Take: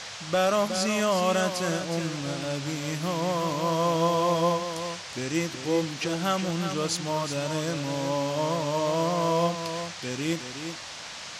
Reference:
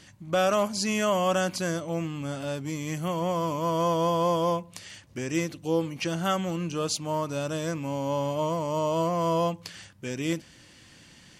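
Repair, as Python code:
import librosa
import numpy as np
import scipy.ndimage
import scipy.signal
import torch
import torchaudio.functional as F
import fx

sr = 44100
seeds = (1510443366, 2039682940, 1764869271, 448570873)

y = fx.noise_reduce(x, sr, print_start_s=10.83, print_end_s=11.33, reduce_db=14.0)
y = fx.fix_echo_inverse(y, sr, delay_ms=367, level_db=-8.5)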